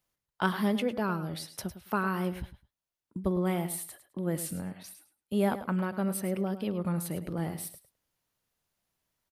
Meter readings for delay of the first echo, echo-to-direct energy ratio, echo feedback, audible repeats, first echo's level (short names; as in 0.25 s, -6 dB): 0.105 s, -12.5 dB, 18%, 2, -12.5 dB